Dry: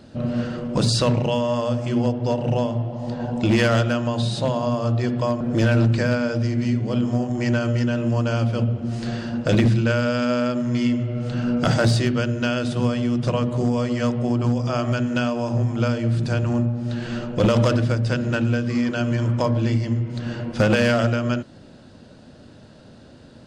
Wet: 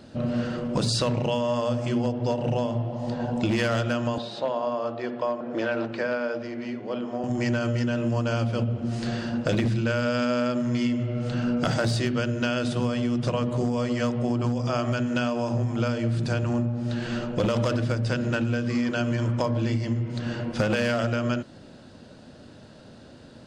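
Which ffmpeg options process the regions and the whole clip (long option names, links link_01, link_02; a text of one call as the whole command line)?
ffmpeg -i in.wav -filter_complex "[0:a]asettb=1/sr,asplit=3[link_01][link_02][link_03];[link_01]atrim=end=4.184[link_04];[link_02]atrim=start=4.18:end=7.24,asetpts=PTS-STARTPTS,afade=type=in:duration=0.004:curve=qsin,afade=type=out:start_time=3.056:duration=0.004:curve=qsin,highpass=390,lowpass=4700,highshelf=frequency=2400:gain=-8.5[link_05];[link_03]atrim=start=7.236[link_06];[link_04][link_05]acrossfade=duration=0.004:curve1=hsin:curve2=qsin[link_07];[link_07][link_06]acrossfade=duration=0.004:curve1=qsin:curve2=hsin,lowshelf=frequency=200:gain=-3.5,acompressor=threshold=-21dB:ratio=6" out.wav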